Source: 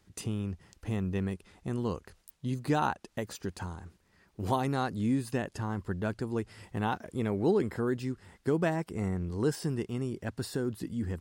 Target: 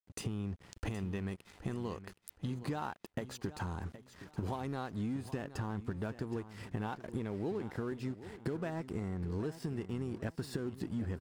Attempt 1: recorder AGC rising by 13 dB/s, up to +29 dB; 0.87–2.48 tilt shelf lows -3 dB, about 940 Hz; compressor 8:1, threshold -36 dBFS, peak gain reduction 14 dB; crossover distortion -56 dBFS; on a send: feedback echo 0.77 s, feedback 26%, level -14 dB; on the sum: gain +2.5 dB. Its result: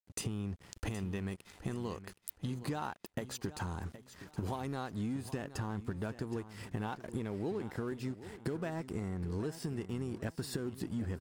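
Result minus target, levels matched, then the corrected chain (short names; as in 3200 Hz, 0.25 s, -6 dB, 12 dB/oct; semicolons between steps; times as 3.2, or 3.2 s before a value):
8000 Hz band +5.5 dB
recorder AGC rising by 13 dB/s, up to +29 dB; 0.87–2.48 tilt shelf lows -3 dB, about 940 Hz; compressor 8:1, threshold -36 dBFS, peak gain reduction 14 dB; high shelf 5400 Hz -7.5 dB; crossover distortion -56 dBFS; on a send: feedback echo 0.77 s, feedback 26%, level -14 dB; on the sum: gain +2.5 dB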